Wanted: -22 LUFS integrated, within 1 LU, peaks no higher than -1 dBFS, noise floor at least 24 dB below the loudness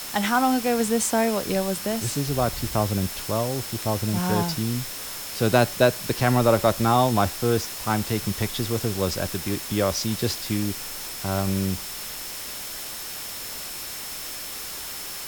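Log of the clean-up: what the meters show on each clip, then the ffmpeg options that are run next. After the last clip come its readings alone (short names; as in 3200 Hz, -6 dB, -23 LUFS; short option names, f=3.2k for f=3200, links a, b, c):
steady tone 5300 Hz; tone level -42 dBFS; noise floor -35 dBFS; noise floor target -49 dBFS; loudness -25.0 LUFS; peak -5.0 dBFS; loudness target -22.0 LUFS
-> -af "bandreject=f=5.3k:w=30"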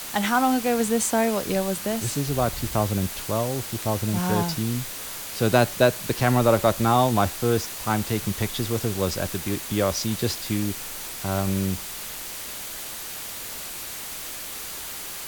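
steady tone none; noise floor -35 dBFS; noise floor target -49 dBFS
-> -af "afftdn=nr=14:nf=-35"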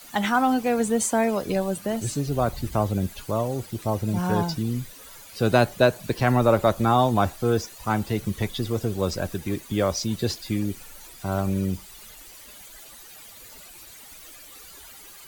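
noise floor -46 dBFS; noise floor target -49 dBFS
-> -af "afftdn=nr=6:nf=-46"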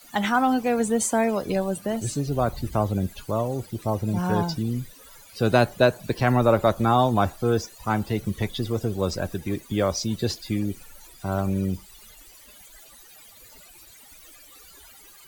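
noise floor -50 dBFS; loudness -24.5 LUFS; peak -5.5 dBFS; loudness target -22.0 LUFS
-> -af "volume=2.5dB"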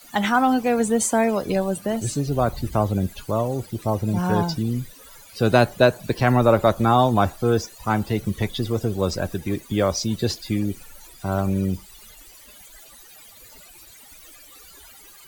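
loudness -22.0 LUFS; peak -3.0 dBFS; noise floor -47 dBFS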